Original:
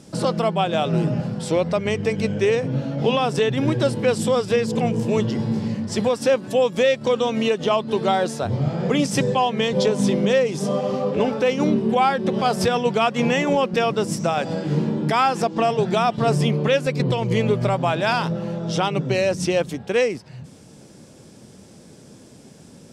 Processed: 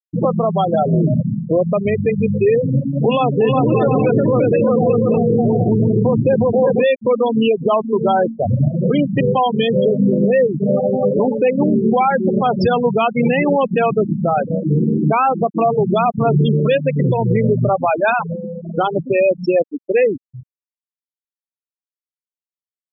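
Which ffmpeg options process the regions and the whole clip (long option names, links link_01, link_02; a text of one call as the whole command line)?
ffmpeg -i in.wav -filter_complex "[0:a]asettb=1/sr,asplit=3[link_01][link_02][link_03];[link_01]atrim=end=2.874[link_04];[link_02]atrim=start=2.87:end=6.84,asetpts=PTS-STARTPTS,afade=type=in:duration=0.004:curve=qsin,afade=type=out:start_time=3.966:duration=0.004:curve=qsin,highshelf=frequency=9100:gain=-10.5,aecho=1:1:360|576|705.6|783.4|830:0.794|0.631|0.501|0.398|0.316,atrim=end_sample=175077[link_05];[link_03]atrim=start=6.836[link_06];[link_04][link_05]acrossfade=duration=0.004:curve1=hsin:curve2=qsin[link_07];[link_07][link_06]acrossfade=duration=0.004:curve1=qsin:curve2=hsin,asettb=1/sr,asplit=3[link_08][link_09][link_10];[link_08]atrim=end=17.694[link_11];[link_09]atrim=start=17.69:end=20.07,asetpts=PTS-STARTPTS,afade=type=in:duration=0.004:curve=qsin,afade=type=out:start_time=2.376:duration=0.004:curve=qsin,highpass=230,bandreject=frequency=940:width=17[link_12];[link_10]atrim=start=20.066[link_13];[link_11][link_12]acrossfade=duration=0.004:curve1=hsin:curve2=qsin[link_14];[link_14][link_13]acrossfade=duration=0.004:curve1=qsin:curve2=hsin,highpass=41,afftfilt=real='re*gte(hypot(re,im),0.2)':imag='im*gte(hypot(re,im),0.2)':win_size=1024:overlap=0.75,alimiter=level_in=13.5dB:limit=-1dB:release=50:level=0:latency=1,volume=-6dB" out.wav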